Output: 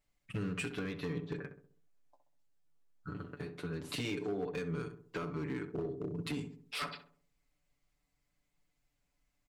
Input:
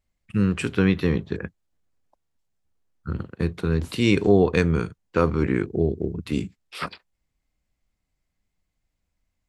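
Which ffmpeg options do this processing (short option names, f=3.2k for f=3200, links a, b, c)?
-filter_complex "[0:a]lowshelf=f=240:g=-5.5,aecho=1:1:6.9:0.89,acompressor=threshold=-31dB:ratio=16,asplit=3[a][b][c];[a]afade=t=out:st=1.36:d=0.02[d];[b]flanger=delay=9.8:depth=5.4:regen=33:speed=1.6:shape=triangular,afade=t=in:st=1.36:d=0.02,afade=t=out:st=3.72:d=0.02[e];[c]afade=t=in:st=3.72:d=0.02[f];[d][e][f]amix=inputs=3:normalize=0,asoftclip=type=hard:threshold=-29dB,asplit=2[g][h];[h]adelay=65,lowpass=f=1.1k:p=1,volume=-7dB,asplit=2[i][j];[j]adelay=65,lowpass=f=1.1k:p=1,volume=0.49,asplit=2[k][l];[l]adelay=65,lowpass=f=1.1k:p=1,volume=0.49,asplit=2[m][n];[n]adelay=65,lowpass=f=1.1k:p=1,volume=0.49,asplit=2[o][p];[p]adelay=65,lowpass=f=1.1k:p=1,volume=0.49,asplit=2[q][r];[r]adelay=65,lowpass=f=1.1k:p=1,volume=0.49[s];[g][i][k][m][o][q][s]amix=inputs=7:normalize=0,volume=-2.5dB"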